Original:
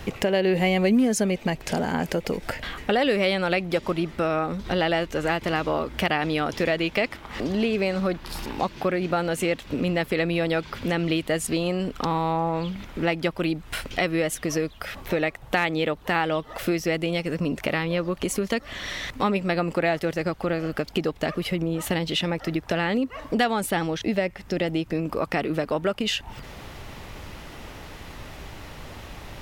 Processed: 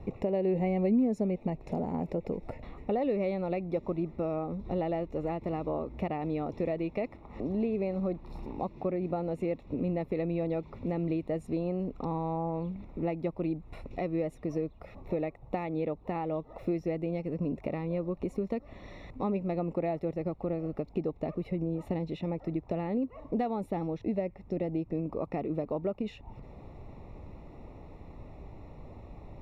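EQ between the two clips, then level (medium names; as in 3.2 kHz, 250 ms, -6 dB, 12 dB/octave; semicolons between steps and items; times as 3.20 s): boxcar filter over 28 samples; -5.5 dB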